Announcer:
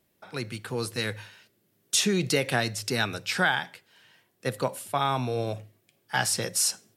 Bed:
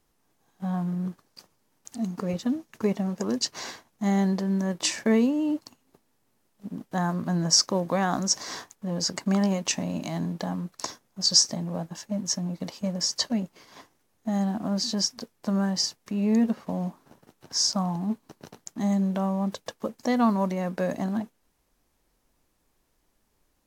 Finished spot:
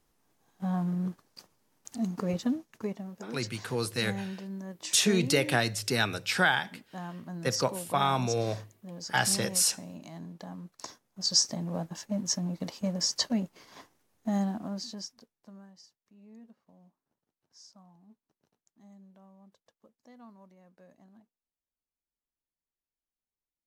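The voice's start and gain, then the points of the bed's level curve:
3.00 s, -0.5 dB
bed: 2.45 s -1.5 dB
3.1 s -13.5 dB
10.31 s -13.5 dB
11.76 s -2 dB
14.36 s -2 dB
15.82 s -30 dB

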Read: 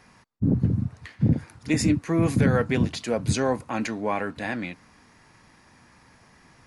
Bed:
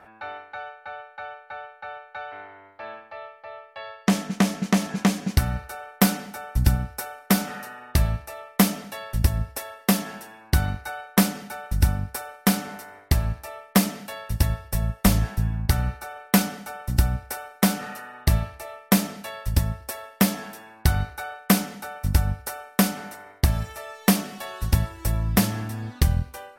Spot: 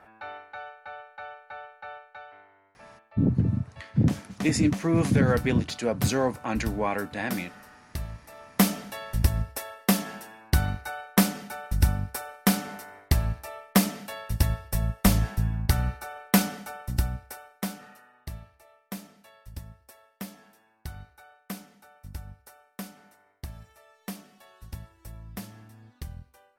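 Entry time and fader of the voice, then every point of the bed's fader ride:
2.75 s, -1.0 dB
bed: 1.94 s -4 dB
2.45 s -13.5 dB
8.17 s -13.5 dB
8.63 s -2 dB
16.61 s -2 dB
18.33 s -19 dB

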